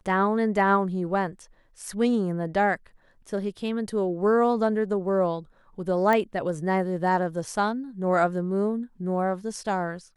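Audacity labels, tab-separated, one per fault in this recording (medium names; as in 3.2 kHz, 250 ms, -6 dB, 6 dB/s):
6.130000	6.130000	pop -12 dBFS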